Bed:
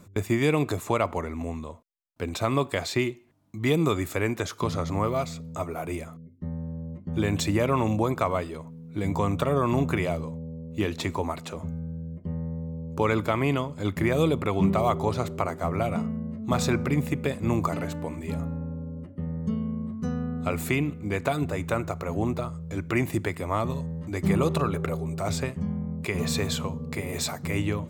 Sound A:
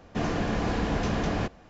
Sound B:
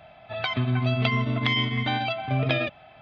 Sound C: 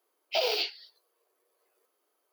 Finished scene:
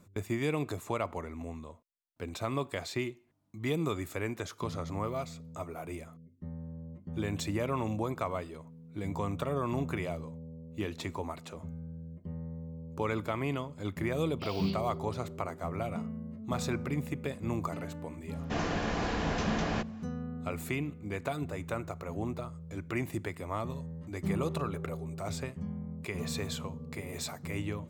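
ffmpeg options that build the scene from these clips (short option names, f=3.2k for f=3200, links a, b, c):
-filter_complex "[0:a]volume=-8.5dB[a];[1:a]lowshelf=f=490:g=-6[b];[3:a]atrim=end=2.32,asetpts=PTS-STARTPTS,volume=-15dB,afade=t=in:d=0.004:c=hsin,afade=t=out:st=2.316:d=0.004:c=hsin,adelay=14080[c];[b]atrim=end=1.69,asetpts=PTS-STARTPTS,volume=-1dB,afade=t=in:d=0.004:c=hsin,afade=t=out:st=1.686:d=0.004:c=hsin,adelay=18350[d];[a][c][d]amix=inputs=3:normalize=0"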